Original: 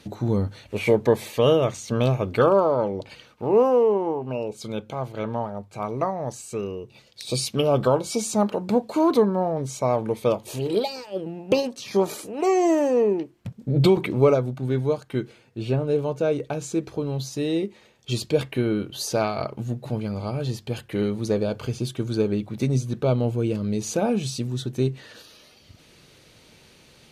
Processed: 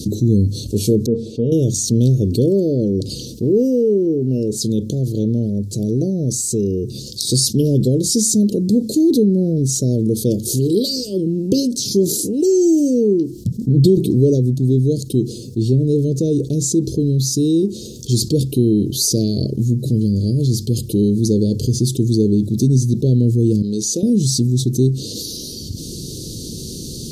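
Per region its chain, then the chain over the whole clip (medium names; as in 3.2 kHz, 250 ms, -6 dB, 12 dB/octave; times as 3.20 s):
1.06–1.52 s: low-pass 1.7 kHz + feedback comb 230 Hz, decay 0.22 s, mix 70%
23.62–24.03 s: high-pass 890 Hz 6 dB/octave + treble shelf 6.8 kHz -11.5 dB
whole clip: inverse Chebyshev band-stop 860–2100 Hz, stop band 60 dB; dynamic bell 1 kHz, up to -6 dB, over -46 dBFS, Q 1.2; level flattener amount 50%; trim +6.5 dB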